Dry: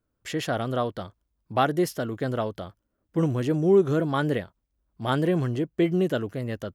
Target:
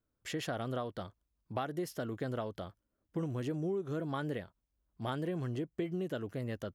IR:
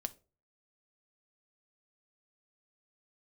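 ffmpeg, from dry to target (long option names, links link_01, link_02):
-af "acompressor=threshold=-27dB:ratio=6,volume=-6dB"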